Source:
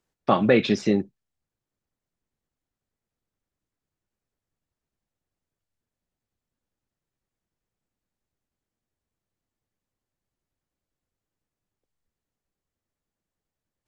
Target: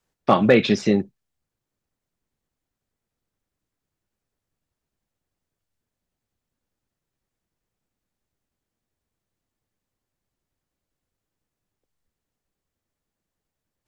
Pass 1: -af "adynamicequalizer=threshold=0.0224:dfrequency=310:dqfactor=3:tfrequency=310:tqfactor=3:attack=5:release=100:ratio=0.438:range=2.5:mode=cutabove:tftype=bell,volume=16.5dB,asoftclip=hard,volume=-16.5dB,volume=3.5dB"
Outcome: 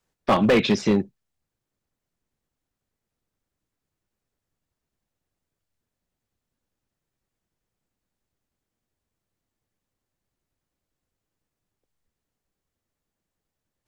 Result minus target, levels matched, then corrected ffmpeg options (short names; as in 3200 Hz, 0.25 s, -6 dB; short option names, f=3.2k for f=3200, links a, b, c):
overloaded stage: distortion +20 dB
-af "adynamicequalizer=threshold=0.0224:dfrequency=310:dqfactor=3:tfrequency=310:tqfactor=3:attack=5:release=100:ratio=0.438:range=2.5:mode=cutabove:tftype=bell,volume=8dB,asoftclip=hard,volume=-8dB,volume=3.5dB"